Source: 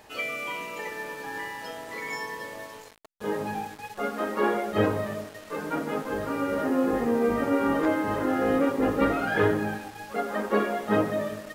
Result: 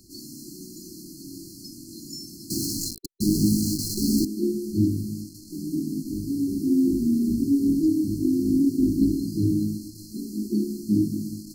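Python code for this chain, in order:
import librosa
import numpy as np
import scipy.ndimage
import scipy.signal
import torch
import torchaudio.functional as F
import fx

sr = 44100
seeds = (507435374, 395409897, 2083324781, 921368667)

y = fx.leveller(x, sr, passes=5, at=(2.5, 4.25))
y = fx.brickwall_bandstop(y, sr, low_hz=380.0, high_hz=4100.0)
y = y * 10.0 ** (6.0 / 20.0)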